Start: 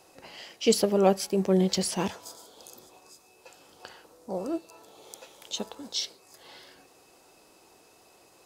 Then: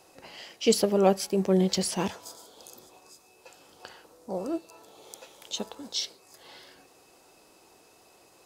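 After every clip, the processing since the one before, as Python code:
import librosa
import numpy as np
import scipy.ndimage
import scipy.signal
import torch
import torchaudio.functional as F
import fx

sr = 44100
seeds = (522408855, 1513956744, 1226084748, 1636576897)

y = x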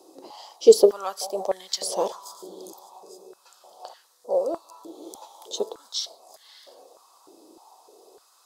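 y = fx.band_shelf(x, sr, hz=2000.0, db=-15.0, octaves=1.2)
y = fx.echo_wet_lowpass(y, sr, ms=173, feedback_pct=82, hz=1200.0, wet_db=-22.5)
y = fx.filter_held_highpass(y, sr, hz=3.3, low_hz=320.0, high_hz=1800.0)
y = y * 10.0 ** (1.0 / 20.0)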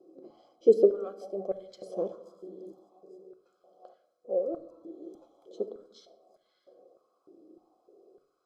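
y = scipy.signal.lfilter(np.full(48, 1.0 / 48), 1.0, x)
y = fx.room_shoebox(y, sr, seeds[0], volume_m3=2300.0, walls='furnished', distance_m=0.92)
y = y * 10.0 ** (-1.5 / 20.0)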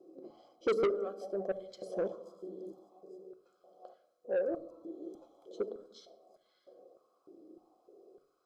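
y = 10.0 ** (-25.0 / 20.0) * np.tanh(x / 10.0 ** (-25.0 / 20.0))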